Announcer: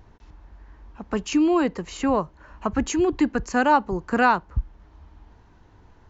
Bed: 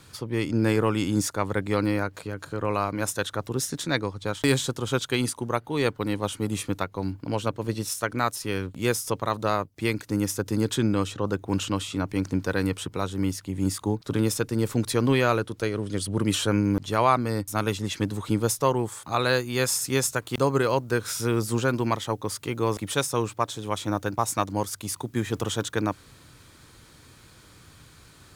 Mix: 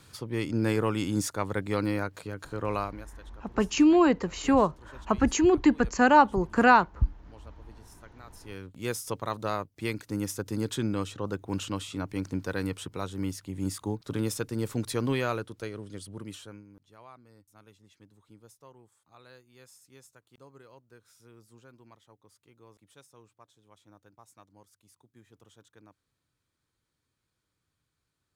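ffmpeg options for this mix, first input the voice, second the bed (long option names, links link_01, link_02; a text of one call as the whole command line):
ffmpeg -i stem1.wav -i stem2.wav -filter_complex "[0:a]adelay=2450,volume=0dB[link_01];[1:a]volume=15.5dB,afade=type=out:start_time=2.77:duration=0.29:silence=0.0841395,afade=type=in:start_time=8.27:duration=0.78:silence=0.105925,afade=type=out:start_time=15.01:duration=1.65:silence=0.0595662[link_02];[link_01][link_02]amix=inputs=2:normalize=0" out.wav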